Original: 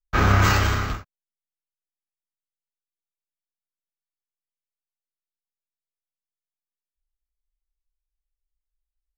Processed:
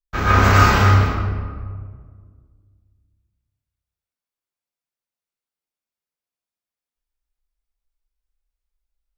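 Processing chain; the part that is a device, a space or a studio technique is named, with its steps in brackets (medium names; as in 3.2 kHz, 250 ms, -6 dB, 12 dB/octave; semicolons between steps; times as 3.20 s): stairwell (reverberation RT60 1.8 s, pre-delay 104 ms, DRR -8.5 dB); trim -3.5 dB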